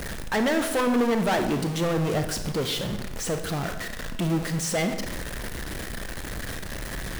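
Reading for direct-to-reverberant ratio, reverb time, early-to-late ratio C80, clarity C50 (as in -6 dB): 7.0 dB, 0.95 s, 10.5 dB, 8.5 dB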